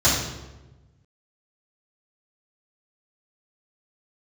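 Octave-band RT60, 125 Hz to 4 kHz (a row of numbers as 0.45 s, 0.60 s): 1.8 s, 1.4 s, 1.2 s, 1.0 s, 0.90 s, 0.75 s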